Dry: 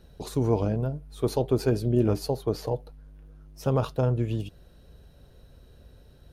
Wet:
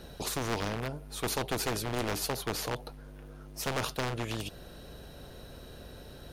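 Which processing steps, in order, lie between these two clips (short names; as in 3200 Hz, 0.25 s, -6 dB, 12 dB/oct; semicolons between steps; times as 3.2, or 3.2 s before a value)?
one-sided fold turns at -22 dBFS; spectral compressor 2:1; gain -3 dB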